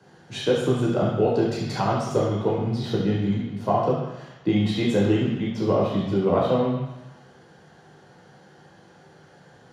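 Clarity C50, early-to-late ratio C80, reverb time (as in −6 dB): 2.5 dB, 4.5 dB, 1.0 s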